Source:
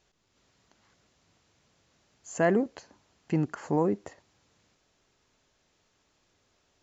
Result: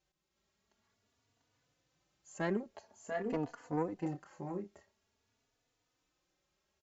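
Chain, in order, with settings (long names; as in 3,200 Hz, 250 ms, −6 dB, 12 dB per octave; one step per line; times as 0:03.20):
0:02.74–0:03.50: parametric band 700 Hz +12 dB 1.1 octaves
multi-tap delay 693/721 ms −4/−10 dB
harmonic generator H 3 −16 dB, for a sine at −12 dBFS
barber-pole flanger 3.4 ms +0.48 Hz
level −4 dB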